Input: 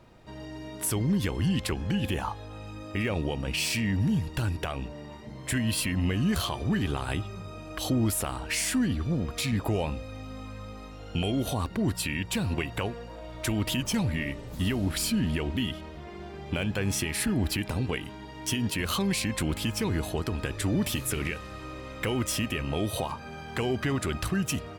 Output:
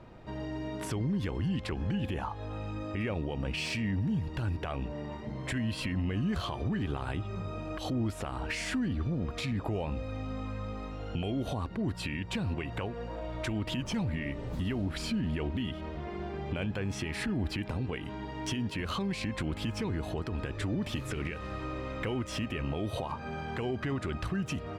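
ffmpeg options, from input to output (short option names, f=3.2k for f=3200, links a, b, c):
-filter_complex "[0:a]acrossover=split=7900[a][b];[b]acompressor=threshold=-41dB:ratio=4:attack=1:release=60[c];[a][c]amix=inputs=2:normalize=0,aemphasis=mode=reproduction:type=75kf,asplit=2[d][e];[e]acompressor=threshold=-36dB:ratio=6,volume=2dB[f];[d][f]amix=inputs=2:normalize=0,alimiter=limit=-21.5dB:level=0:latency=1:release=149,volume=-3dB"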